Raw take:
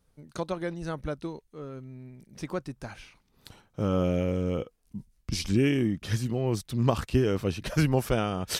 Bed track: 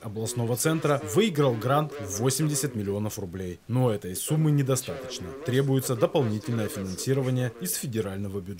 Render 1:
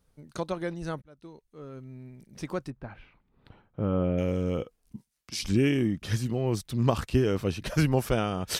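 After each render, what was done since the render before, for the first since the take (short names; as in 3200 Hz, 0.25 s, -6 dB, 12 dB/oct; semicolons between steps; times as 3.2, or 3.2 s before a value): 1.02–1.93 fade in; 2.7–4.18 air absorption 500 m; 4.96–5.43 HPF 1000 Hz 6 dB/oct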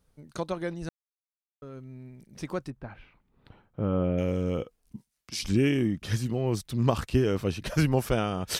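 0.89–1.62 mute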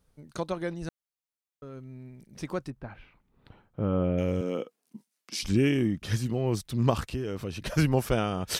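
4.41–5.43 HPF 200 Hz 24 dB/oct; 7.02–7.61 compressor 3:1, threshold -31 dBFS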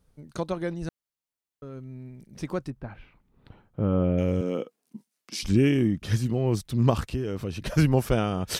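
low shelf 460 Hz +4 dB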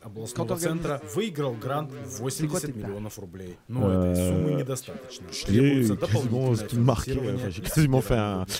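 add bed track -5.5 dB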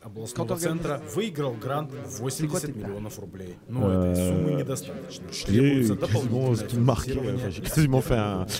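dark delay 0.282 s, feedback 68%, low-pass 720 Hz, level -17 dB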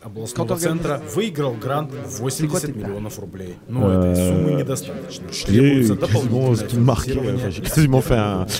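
gain +6.5 dB; limiter -3 dBFS, peak gain reduction 2.5 dB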